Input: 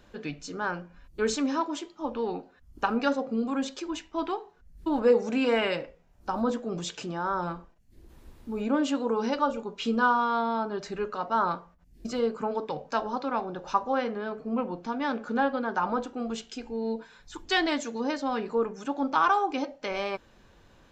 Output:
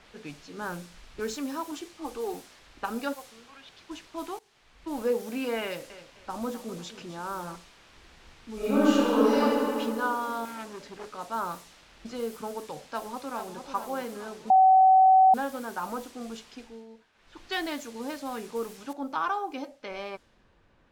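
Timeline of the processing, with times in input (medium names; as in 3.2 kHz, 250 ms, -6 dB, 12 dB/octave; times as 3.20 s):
0.57–1.20 s: bass shelf 350 Hz +7.5 dB
1.71–2.34 s: comb 2.6 ms, depth 87%
3.13–3.89 s: band-pass filter 920 Hz -> 5.1 kHz, Q 2.1
4.39–5.00 s: fade in, from -18 dB
5.64–7.56 s: bit-crushed delay 258 ms, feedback 35%, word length 9-bit, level -12.5 dB
8.54–9.41 s: reverb throw, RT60 2.6 s, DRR -11.5 dB
10.45–11.14 s: transformer saturation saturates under 1.5 kHz
12.79–13.66 s: echo throw 440 ms, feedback 55%, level -7 dB
14.50–15.34 s: bleep 758 Hz -8 dBFS
16.58–17.41 s: dip -12.5 dB, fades 0.28 s
18.93 s: noise floor step -43 dB -60 dB
whole clip: level-controlled noise filter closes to 2.4 kHz, open at -24.5 dBFS; trim -6 dB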